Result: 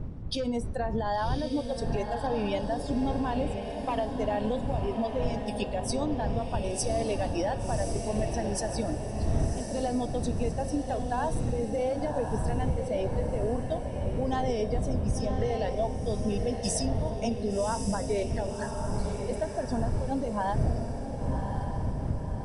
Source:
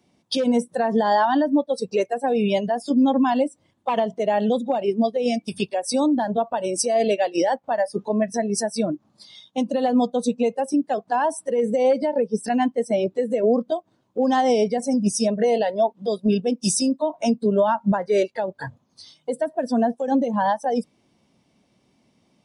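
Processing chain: wind noise 100 Hz -16 dBFS; bass shelf 210 Hz -4 dB; de-hum 181.7 Hz, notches 39; compression 4:1, threshold -19 dBFS, peak gain reduction 15.5 dB; echo that smears into a reverb 1104 ms, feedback 52%, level -5.5 dB; trim -7 dB

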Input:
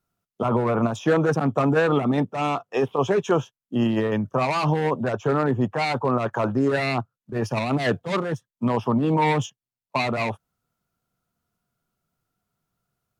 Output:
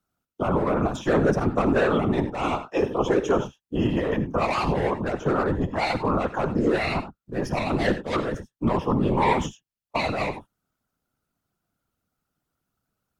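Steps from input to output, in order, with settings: gated-style reverb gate 110 ms rising, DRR 10.5 dB; whisper effect; trim -1.5 dB

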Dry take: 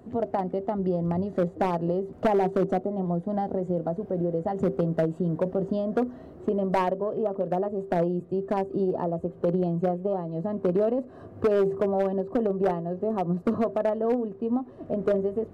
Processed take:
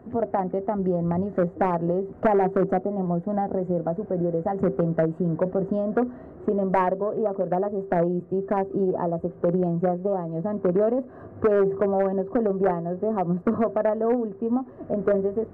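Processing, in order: resonant high shelf 2.5 kHz -11.5 dB, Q 1.5; trim +2 dB

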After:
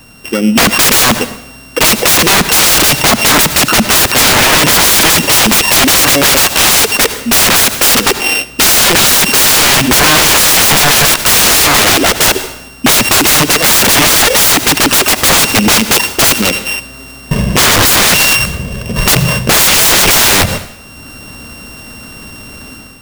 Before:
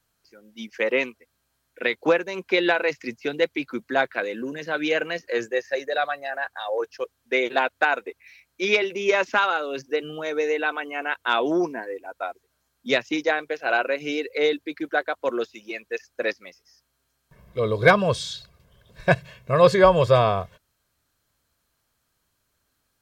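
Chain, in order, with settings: sorted samples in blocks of 16 samples; peaking EQ 230 Hz +9.5 dB 0.89 oct; band-stop 2.3 kHz, Q 19; level rider gain up to 9 dB; integer overflow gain 27 dB; on a send at -18 dB: reverberation RT60 0.75 s, pre-delay 57 ms; on the sum: loudness maximiser +34 dB; trim -1 dB

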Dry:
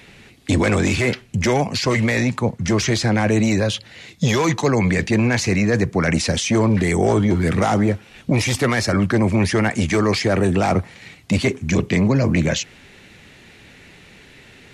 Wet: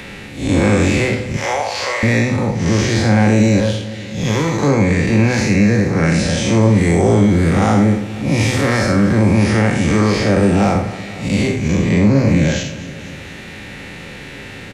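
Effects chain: spectral blur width 154 ms; 1.36–2.03 s: inverse Chebyshev high-pass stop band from 170 Hz, stop band 60 dB; 3.60–4.62 s: valve stage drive 15 dB, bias 0.65; feedback delay 237 ms, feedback 49%, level -18 dB; on a send at -6.5 dB: reverberation RT60 0.40 s, pre-delay 3 ms; on the sum: three bands compressed up and down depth 40%; trim +5 dB

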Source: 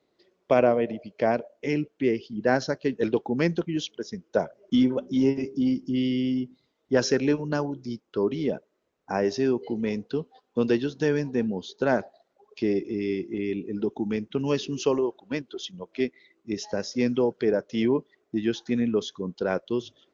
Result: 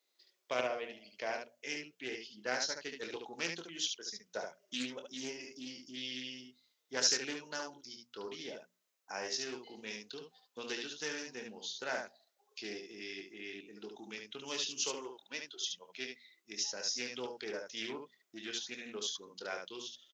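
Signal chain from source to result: differentiator; hum notches 60/120/180/240 Hz; early reflections 24 ms -8 dB, 72 ms -5 dB; loudspeaker Doppler distortion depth 0.25 ms; trim +4 dB

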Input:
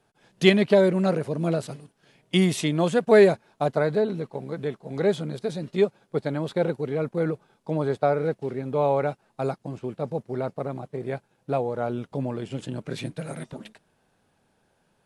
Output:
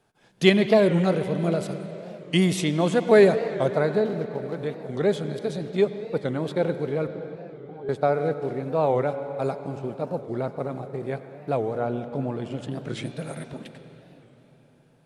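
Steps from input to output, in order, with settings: 4.05–4.55 s: median filter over 15 samples; 7.07–7.89 s: pitch-class resonator G, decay 0.1 s; 11.78–12.71 s: treble shelf 5.1 kHz -7 dB; reverberation RT60 4.1 s, pre-delay 79 ms, DRR 9.5 dB; warped record 45 rpm, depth 160 cents

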